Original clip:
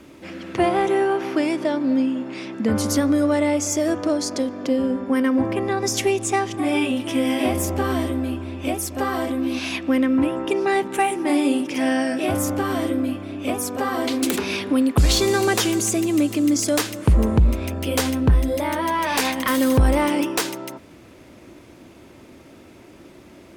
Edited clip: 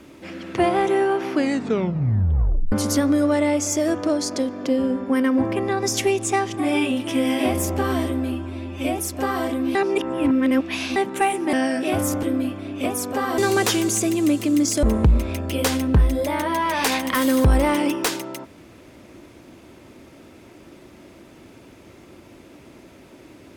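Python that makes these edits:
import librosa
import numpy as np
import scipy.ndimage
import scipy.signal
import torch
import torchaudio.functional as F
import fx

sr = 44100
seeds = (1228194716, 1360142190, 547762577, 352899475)

y = fx.edit(x, sr, fx.tape_stop(start_s=1.32, length_s=1.4),
    fx.stretch_span(start_s=8.32, length_s=0.44, factor=1.5),
    fx.reverse_span(start_s=9.53, length_s=1.21),
    fx.cut(start_s=11.31, length_s=0.58),
    fx.cut(start_s=12.59, length_s=0.28),
    fx.cut(start_s=14.02, length_s=1.27),
    fx.cut(start_s=16.74, length_s=0.42), tone=tone)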